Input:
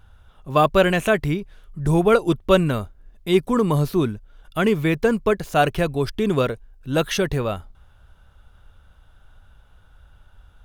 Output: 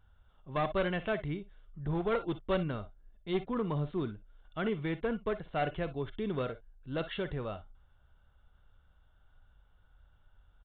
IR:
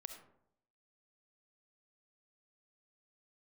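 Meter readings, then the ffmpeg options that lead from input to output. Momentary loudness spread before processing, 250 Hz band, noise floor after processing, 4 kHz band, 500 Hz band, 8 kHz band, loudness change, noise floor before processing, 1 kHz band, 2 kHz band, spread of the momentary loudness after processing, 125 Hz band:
11 LU, -14.0 dB, -66 dBFS, -15.5 dB, -14.5 dB, under -40 dB, -14.5 dB, -53 dBFS, -14.5 dB, -14.5 dB, 10 LU, -14.0 dB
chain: -filter_complex "[0:a]bandreject=f=2500:w=11,aresample=8000,aeval=exprs='clip(val(0),-1,0.178)':c=same,aresample=44100[s0];[1:a]atrim=start_sample=2205,atrim=end_sample=3087,asetrate=48510,aresample=44100[s1];[s0][s1]afir=irnorm=-1:irlink=0,volume=0.422"

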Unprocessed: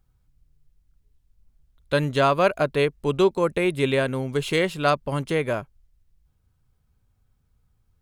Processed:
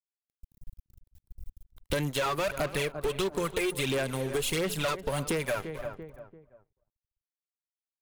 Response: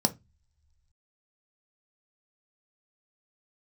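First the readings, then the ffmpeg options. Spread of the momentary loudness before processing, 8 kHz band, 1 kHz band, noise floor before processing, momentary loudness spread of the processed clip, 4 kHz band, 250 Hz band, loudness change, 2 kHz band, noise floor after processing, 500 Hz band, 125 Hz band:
5 LU, +5.5 dB, -9.0 dB, -68 dBFS, 8 LU, -2.5 dB, -8.0 dB, -7.5 dB, -6.0 dB, under -85 dBFS, -8.5 dB, -7.5 dB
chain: -filter_complex "[0:a]aemphasis=mode=production:type=50kf,asplit=2[s0][s1];[s1]aecho=0:1:262:0.0794[s2];[s0][s2]amix=inputs=2:normalize=0,aphaser=in_gain=1:out_gain=1:delay=2.6:decay=0.64:speed=1.5:type=sinusoidal,acrossover=split=160|1000[s3][s4][s5];[s3]acompressor=threshold=0.0141:ratio=4[s6];[s4]acompressor=threshold=0.0794:ratio=4[s7];[s5]acompressor=threshold=0.0794:ratio=4[s8];[s6][s7][s8]amix=inputs=3:normalize=0,lowshelf=f=60:g=8.5,bandreject=f=60:t=h:w=6,bandreject=f=120:t=h:w=6,bandreject=f=180:t=h:w=6,aeval=exprs='sgn(val(0))*max(abs(val(0))-0.0106,0)':c=same,asplit=2[s9][s10];[s10]adelay=341,lowpass=f=1200:p=1,volume=0.133,asplit=2[s11][s12];[s12]adelay=341,lowpass=f=1200:p=1,volume=0.35,asplit=2[s13][s14];[s14]adelay=341,lowpass=f=1200:p=1,volume=0.35[s15];[s11][s13][s15]amix=inputs=3:normalize=0[s16];[s9][s16]amix=inputs=2:normalize=0,asoftclip=type=hard:threshold=0.0841,acompressor=threshold=0.0178:ratio=6,volume=2.24"

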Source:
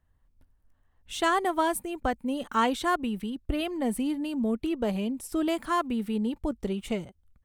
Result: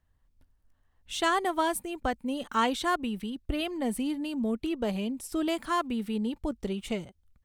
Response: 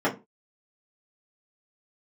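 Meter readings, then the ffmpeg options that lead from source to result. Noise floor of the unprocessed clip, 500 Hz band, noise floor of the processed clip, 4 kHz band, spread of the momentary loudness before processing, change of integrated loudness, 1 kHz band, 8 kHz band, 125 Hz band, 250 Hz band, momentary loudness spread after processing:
-69 dBFS, -2.0 dB, -71 dBFS, +1.5 dB, 7 LU, -1.5 dB, -1.5 dB, 0.0 dB, -2.0 dB, -2.0 dB, 8 LU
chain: -af "equalizer=f=4400:w=0.66:g=4,volume=0.794"

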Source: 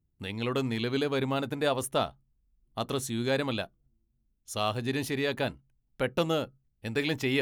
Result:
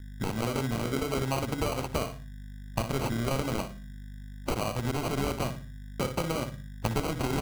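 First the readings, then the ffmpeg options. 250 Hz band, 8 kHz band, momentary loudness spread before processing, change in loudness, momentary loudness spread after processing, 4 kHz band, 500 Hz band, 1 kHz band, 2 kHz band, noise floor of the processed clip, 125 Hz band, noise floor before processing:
-0.5 dB, +2.0 dB, 9 LU, -1.0 dB, 13 LU, -4.0 dB, -2.5 dB, +1.0 dB, -4.0 dB, -43 dBFS, +3.5 dB, -75 dBFS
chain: -filter_complex "[0:a]equalizer=f=5400:w=0.72:g=13,bandreject=f=50:t=h:w=6,bandreject=f=100:t=h:w=6,bandreject=f=150:t=h:w=6,bandreject=f=200:t=h:w=6,acompressor=threshold=0.0158:ratio=6,bandreject=f=2900:w=7.4,aresample=16000,aresample=44100,highpass=f=100:w=0.5412,highpass=f=100:w=1.3066,bass=f=250:g=10,treble=f=4000:g=1,asplit=2[s0][s1];[s1]adelay=60,lowpass=f=1700:p=1,volume=0.398,asplit=2[s2][s3];[s3]adelay=60,lowpass=f=1700:p=1,volume=0.32,asplit=2[s4][s5];[s5]adelay=60,lowpass=f=1700:p=1,volume=0.32,asplit=2[s6][s7];[s7]adelay=60,lowpass=f=1700:p=1,volume=0.32[s8];[s0][s2][s4][s6][s8]amix=inputs=5:normalize=0,aeval=exprs='val(0)+0.00316*(sin(2*PI*50*n/s)+sin(2*PI*2*50*n/s)/2+sin(2*PI*3*50*n/s)/3+sin(2*PI*4*50*n/s)/4+sin(2*PI*5*50*n/s)/5)':c=same,acrossover=split=490|3000[s9][s10][s11];[s9]acompressor=threshold=0.00631:ratio=2[s12];[s12][s10][s11]amix=inputs=3:normalize=0,acrusher=samples=25:mix=1:aa=0.000001,volume=2.82"

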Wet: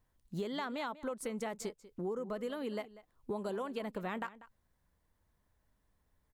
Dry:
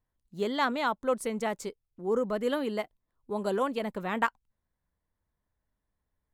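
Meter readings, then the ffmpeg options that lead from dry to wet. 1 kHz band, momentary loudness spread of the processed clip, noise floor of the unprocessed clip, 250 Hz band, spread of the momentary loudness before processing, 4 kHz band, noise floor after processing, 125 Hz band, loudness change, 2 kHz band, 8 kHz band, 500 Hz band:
-11.0 dB, 7 LU, -85 dBFS, -7.0 dB, 10 LU, -8.5 dB, -78 dBFS, -3.5 dB, -9.0 dB, -11.0 dB, -5.0 dB, -8.5 dB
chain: -filter_complex "[0:a]alimiter=limit=0.1:level=0:latency=1:release=159,acompressor=threshold=0.00794:ratio=10,asplit=2[s0][s1];[s1]adelay=192.4,volume=0.141,highshelf=f=4000:g=-4.33[s2];[s0][s2]amix=inputs=2:normalize=0,volume=2.11"

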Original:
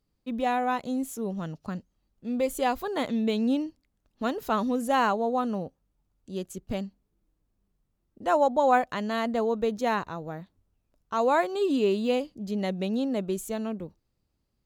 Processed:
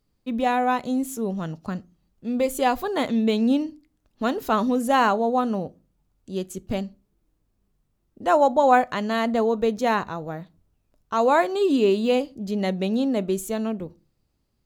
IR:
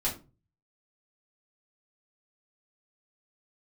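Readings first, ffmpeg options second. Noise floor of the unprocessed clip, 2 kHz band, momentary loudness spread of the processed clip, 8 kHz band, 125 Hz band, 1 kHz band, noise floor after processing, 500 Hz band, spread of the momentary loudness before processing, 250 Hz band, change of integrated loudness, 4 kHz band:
-77 dBFS, +4.5 dB, 14 LU, +4.5 dB, +4.5 dB, +4.5 dB, -72 dBFS, +4.5 dB, 14 LU, +5.0 dB, +5.0 dB, +4.5 dB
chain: -filter_complex "[0:a]asplit=2[s0][s1];[1:a]atrim=start_sample=2205[s2];[s1][s2]afir=irnorm=-1:irlink=0,volume=0.075[s3];[s0][s3]amix=inputs=2:normalize=0,volume=1.58"

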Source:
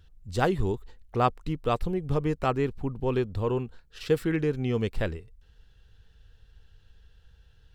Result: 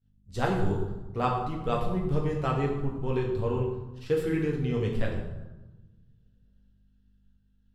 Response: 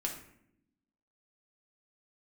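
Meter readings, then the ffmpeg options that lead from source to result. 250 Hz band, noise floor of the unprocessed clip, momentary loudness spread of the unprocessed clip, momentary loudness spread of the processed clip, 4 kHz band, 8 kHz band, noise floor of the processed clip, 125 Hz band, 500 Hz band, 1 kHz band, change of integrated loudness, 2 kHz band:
-1.0 dB, -59 dBFS, 9 LU, 8 LU, -3.5 dB, no reading, -65 dBFS, +0.5 dB, -1.5 dB, -1.5 dB, -1.0 dB, -2.0 dB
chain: -filter_complex "[0:a]aeval=exprs='val(0)+0.00631*(sin(2*PI*50*n/s)+sin(2*PI*2*50*n/s)/2+sin(2*PI*3*50*n/s)/3+sin(2*PI*4*50*n/s)/4+sin(2*PI*5*50*n/s)/5)':c=same,agate=range=0.0224:threshold=0.0224:ratio=3:detection=peak[s0];[1:a]atrim=start_sample=2205,asetrate=26019,aresample=44100[s1];[s0][s1]afir=irnorm=-1:irlink=0,volume=0.447"

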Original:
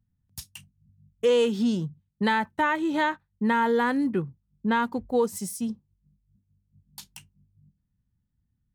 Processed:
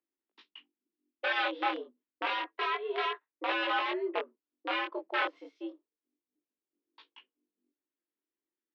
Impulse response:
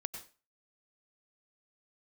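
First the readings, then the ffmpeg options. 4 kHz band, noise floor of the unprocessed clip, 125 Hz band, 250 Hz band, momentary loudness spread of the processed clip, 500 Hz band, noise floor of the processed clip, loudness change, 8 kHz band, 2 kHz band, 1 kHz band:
0.0 dB, -77 dBFS, under -40 dB, -16.5 dB, 14 LU, -10.5 dB, under -85 dBFS, -7.5 dB, under -25 dB, -3.0 dB, -5.5 dB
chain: -af "aeval=exprs='(mod(8.91*val(0)+1,2)-1)/8.91':c=same,highpass=f=280:t=q:w=0.5412,highpass=f=280:t=q:w=1.307,lowpass=f=3300:t=q:w=0.5176,lowpass=f=3300:t=q:w=0.7071,lowpass=f=3300:t=q:w=1.932,afreqshift=100,flanger=delay=18:depth=7.4:speed=0.29,volume=0.841"

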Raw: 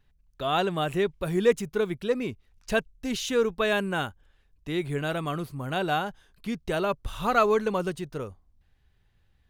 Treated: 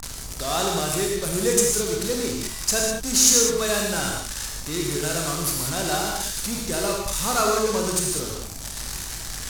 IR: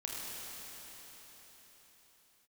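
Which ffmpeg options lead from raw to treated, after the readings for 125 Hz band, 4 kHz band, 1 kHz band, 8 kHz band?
+2.5 dB, +10.0 dB, +1.0 dB, +25.0 dB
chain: -filter_complex "[0:a]aeval=exprs='val(0)+0.5*0.0251*sgn(val(0))':c=same,acrossover=split=620|1800[s0][s1][s2];[s1]acompressor=mode=upward:threshold=0.0141:ratio=2.5[s3];[s0][s3][s2]amix=inputs=3:normalize=0,aexciter=amount=12.2:drive=6.7:freq=4800,adynamicsmooth=sensitivity=7:basefreq=1700,aeval=exprs='val(0)+0.00794*(sin(2*PI*50*n/s)+sin(2*PI*2*50*n/s)/2+sin(2*PI*3*50*n/s)/3+sin(2*PI*4*50*n/s)/4+sin(2*PI*5*50*n/s)/5)':c=same[s4];[1:a]atrim=start_sample=2205,afade=t=out:st=0.26:d=0.01,atrim=end_sample=11907[s5];[s4][s5]afir=irnorm=-1:irlink=0"

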